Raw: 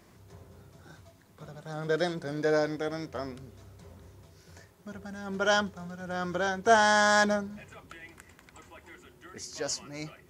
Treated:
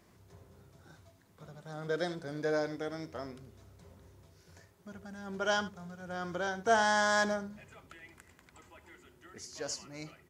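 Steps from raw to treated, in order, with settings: echo 75 ms -15.5 dB; gain -5.5 dB

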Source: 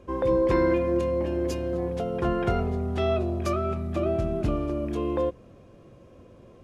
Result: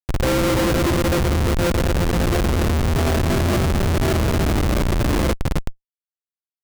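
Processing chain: grains 0.1 s, grains 20/s, spray 0.1 s; bouncing-ball echo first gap 0.26 s, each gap 0.85×, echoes 5; Schmitt trigger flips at -24 dBFS; gain +8.5 dB

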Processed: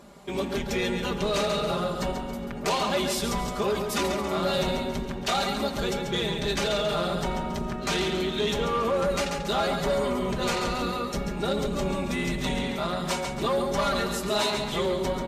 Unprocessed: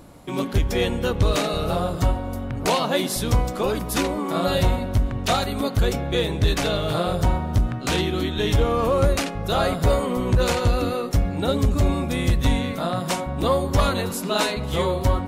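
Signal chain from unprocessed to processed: octaver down 2 oct, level +2 dB; HPF 140 Hz 6 dB/oct; bell 11000 Hz -11 dB 0.39 oct; feedback echo 0.138 s, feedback 41%, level -8 dB; in parallel at -1.5 dB: limiter -14.5 dBFS, peak gain reduction 8 dB; on the sum: low shelf 210 Hz -6.5 dB; comb 5 ms, depth 82%; soft clip -11 dBFS, distortion -17 dB; gain -7.5 dB; Vorbis 64 kbps 32000 Hz

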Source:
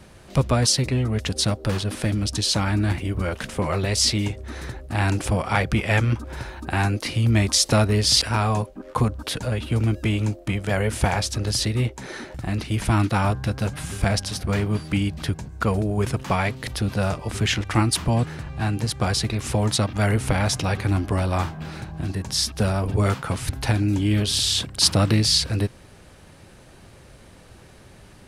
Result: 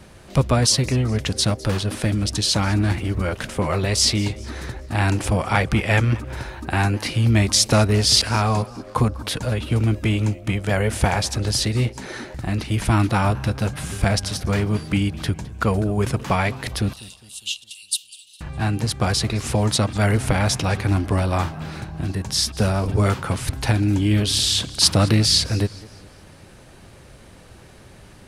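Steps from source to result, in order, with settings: 16.93–18.41 rippled Chebyshev high-pass 2700 Hz, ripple 6 dB; warbling echo 0.204 s, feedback 44%, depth 181 cents, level -20.5 dB; gain +2 dB

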